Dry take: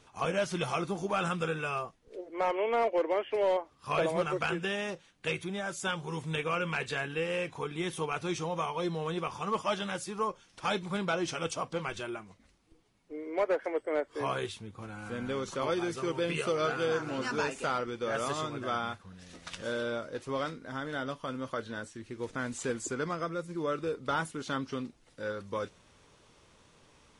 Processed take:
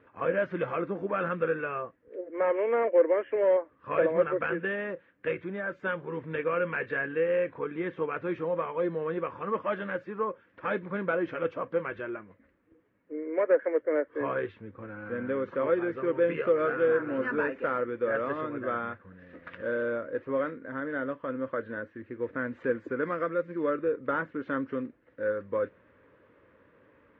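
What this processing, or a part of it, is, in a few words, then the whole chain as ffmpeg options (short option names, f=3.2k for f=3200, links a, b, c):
bass cabinet: -filter_complex "[0:a]highpass=83,equalizer=f=150:t=q:w=4:g=-6,equalizer=f=290:t=q:w=4:g=6,equalizer=f=520:t=q:w=4:g=9,equalizer=f=780:t=q:w=4:g=-9,equalizer=f=1.7k:t=q:w=4:g=7,lowpass=f=2.1k:w=0.5412,lowpass=f=2.1k:w=1.3066,asettb=1/sr,asplit=3[a][b][c];[a]atrim=end=23.034[d];[b]atrim=start=23.03:end=23.7,asetpts=PTS-STARTPTS,afade=t=in:d=0.004:c=qsin,afade=t=out:st=0.666:d=0.004:c=qsin,highshelf=f=2.1k:g=9[e];[c]atrim=start=23.696[f];[d][e]acrossfade=d=0.004:c1=hsin:c2=qsin[g];[g][f]acrossfade=d=0.004:c1=qsin:c2=hsin"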